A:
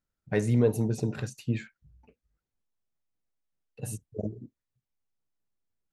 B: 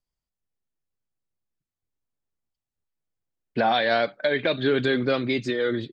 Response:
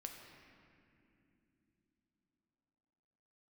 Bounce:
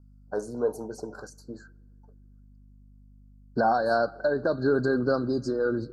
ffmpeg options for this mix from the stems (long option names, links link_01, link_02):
-filter_complex "[0:a]highpass=480,aemphasis=mode=reproduction:type=cd,volume=1.5dB,asplit=2[link_01][link_02];[link_02]volume=-21dB[link_03];[1:a]aeval=exprs='val(0)+0.00282*(sin(2*PI*50*n/s)+sin(2*PI*2*50*n/s)/2+sin(2*PI*3*50*n/s)/3+sin(2*PI*4*50*n/s)/4+sin(2*PI*5*50*n/s)/5)':channel_layout=same,volume=-2dB,asplit=3[link_04][link_05][link_06];[link_05]volume=-13.5dB[link_07];[link_06]apad=whole_len=261140[link_08];[link_01][link_08]sidechaincompress=threshold=-37dB:ratio=8:attack=16:release=746[link_09];[2:a]atrim=start_sample=2205[link_10];[link_03][link_07]amix=inputs=2:normalize=0[link_11];[link_11][link_10]afir=irnorm=-1:irlink=0[link_12];[link_09][link_04][link_12]amix=inputs=3:normalize=0,asuperstop=centerf=2600:order=20:qfactor=0.99"